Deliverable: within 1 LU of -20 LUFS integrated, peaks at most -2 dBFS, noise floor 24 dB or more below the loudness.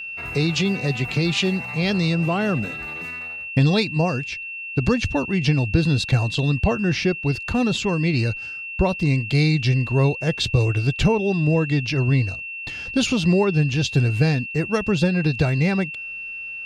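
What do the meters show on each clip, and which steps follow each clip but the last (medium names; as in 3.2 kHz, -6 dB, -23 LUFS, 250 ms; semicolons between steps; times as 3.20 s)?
steady tone 2.7 kHz; tone level -30 dBFS; loudness -21.5 LUFS; peak level -4.5 dBFS; loudness target -20.0 LUFS
-> band-stop 2.7 kHz, Q 30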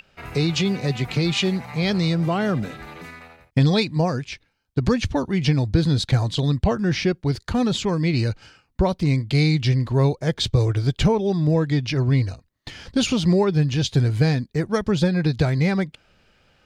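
steady tone not found; loudness -21.5 LUFS; peak level -5.0 dBFS; loudness target -20.0 LUFS
-> trim +1.5 dB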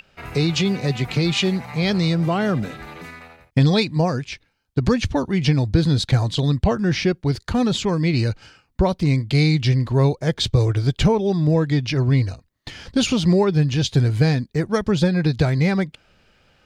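loudness -20.0 LUFS; peak level -3.5 dBFS; noise floor -65 dBFS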